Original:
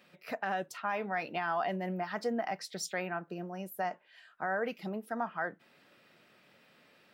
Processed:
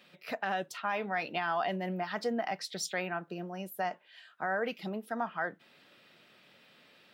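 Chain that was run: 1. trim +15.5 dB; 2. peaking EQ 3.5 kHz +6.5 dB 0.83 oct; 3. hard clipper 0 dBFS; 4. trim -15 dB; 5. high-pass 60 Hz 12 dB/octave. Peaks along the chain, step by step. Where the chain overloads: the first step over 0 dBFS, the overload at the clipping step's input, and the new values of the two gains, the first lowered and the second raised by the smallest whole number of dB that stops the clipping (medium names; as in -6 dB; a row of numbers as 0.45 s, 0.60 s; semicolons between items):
-7.0 dBFS, -5.5 dBFS, -5.5 dBFS, -20.5 dBFS, -20.5 dBFS; nothing clips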